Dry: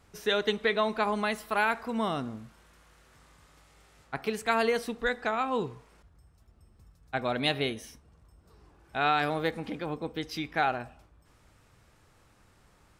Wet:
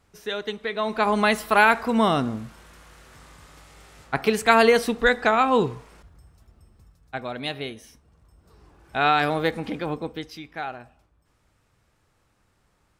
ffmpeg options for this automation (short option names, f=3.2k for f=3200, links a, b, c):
-af "volume=18.5dB,afade=t=in:st=0.73:d=0.56:silence=0.237137,afade=t=out:st=5.68:d=1.62:silence=0.237137,afade=t=in:st=7.83:d=1.13:silence=0.375837,afade=t=out:st=9.92:d=0.46:silence=0.281838"